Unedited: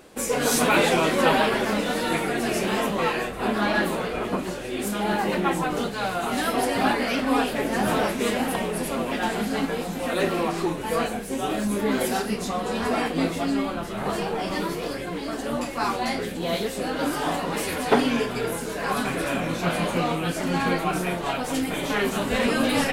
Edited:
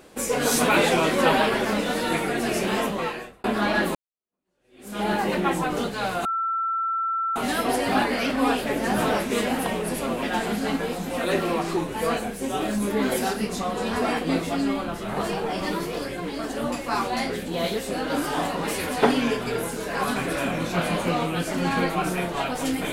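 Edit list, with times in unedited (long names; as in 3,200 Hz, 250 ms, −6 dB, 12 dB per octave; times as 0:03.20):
0:02.81–0:03.44: fade out
0:03.95–0:05.00: fade in exponential
0:06.25: insert tone 1,340 Hz −22.5 dBFS 1.11 s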